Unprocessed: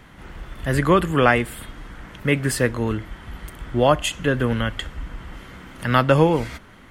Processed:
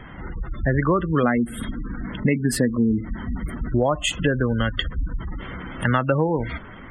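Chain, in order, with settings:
0:01.23–0:03.68: parametric band 230 Hz +12 dB 0.46 octaves
gate on every frequency bin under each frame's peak −20 dB strong
downward compressor 6 to 1, threshold −24 dBFS, peak gain reduction 14 dB
level +7 dB

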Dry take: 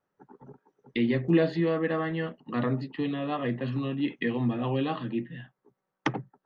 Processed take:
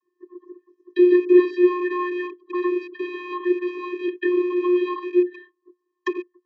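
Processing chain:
loose part that buzzes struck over −37 dBFS, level −28 dBFS
channel vocoder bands 32, square 357 Hz
level +8.5 dB

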